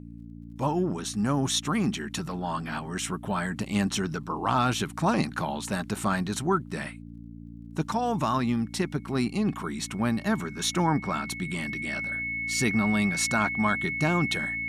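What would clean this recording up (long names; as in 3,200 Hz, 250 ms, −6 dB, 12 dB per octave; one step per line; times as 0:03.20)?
click removal
hum removal 57.3 Hz, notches 5
notch filter 2,200 Hz, Q 30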